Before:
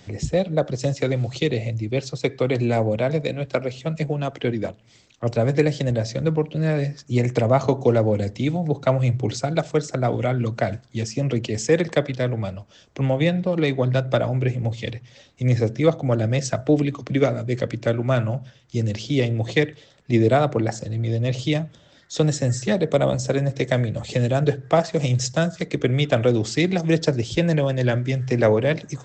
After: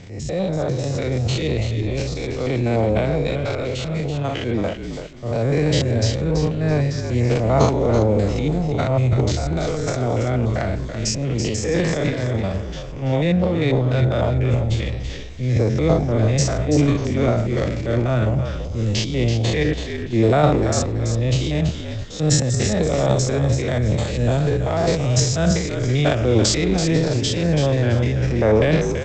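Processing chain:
spectrum averaged block by block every 100 ms
transient designer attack −6 dB, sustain +12 dB
echo with shifted repeats 332 ms, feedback 30%, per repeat −52 Hz, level −8 dB
level +2.5 dB

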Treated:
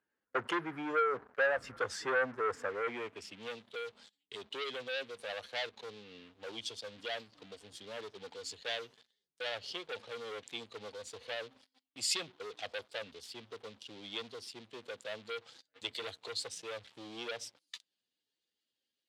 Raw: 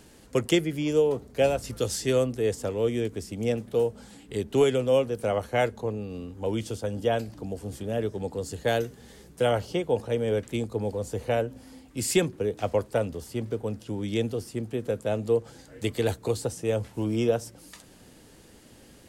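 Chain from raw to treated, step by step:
expanding power law on the bin magnitudes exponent 1.5
noise gate −46 dBFS, range −11 dB
dynamic equaliser 7,900 Hz, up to −4 dB, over −52 dBFS, Q 1.1
leveller curve on the samples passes 3
band-pass filter sweep 1,500 Hz → 3,700 Hz, 0:02.57–0:03.53

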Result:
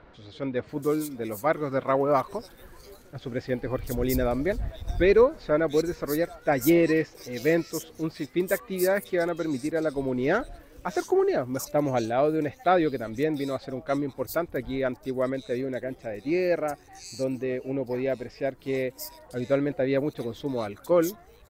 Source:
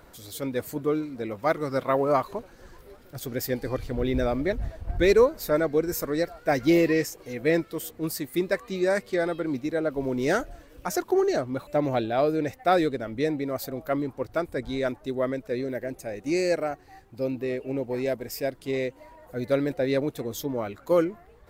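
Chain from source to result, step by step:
multiband delay without the direct sound lows, highs 690 ms, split 4,000 Hz

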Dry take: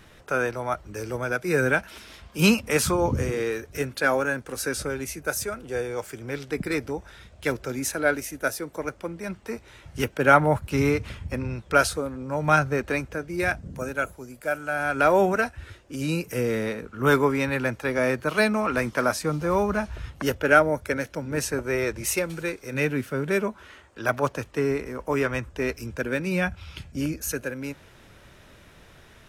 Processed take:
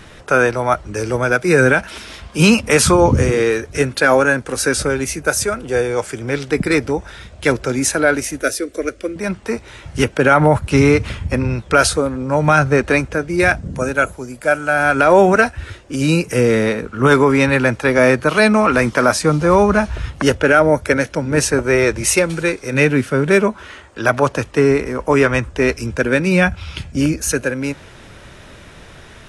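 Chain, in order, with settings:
0:08.42–0:09.16: phaser with its sweep stopped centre 370 Hz, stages 4
boost into a limiter +12.5 dB
level −1 dB
AAC 96 kbit/s 24,000 Hz

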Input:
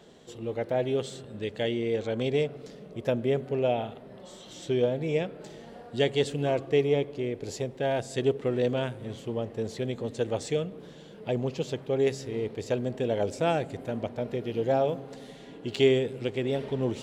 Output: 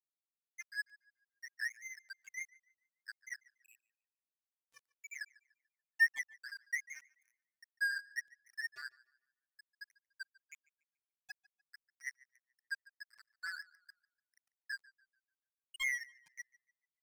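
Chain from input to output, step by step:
fade-out on the ending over 0.90 s
four-pole ladder high-pass 1,600 Hz, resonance 70%
spectral peaks only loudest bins 2
dead-zone distortion −54 dBFS
on a send: tape delay 145 ms, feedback 35%, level −21.5 dB, low-pass 5,500 Hz
on the sum: level +16 dB

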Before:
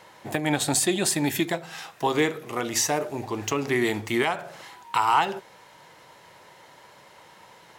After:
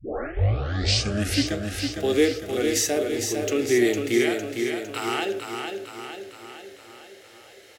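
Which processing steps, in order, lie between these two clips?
turntable start at the beginning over 1.65 s
harmonic and percussive parts rebalanced percussive −8 dB
phaser with its sweep stopped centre 400 Hz, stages 4
on a send: repeating echo 456 ms, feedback 56%, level −5.5 dB
on the sum: level +6 dB

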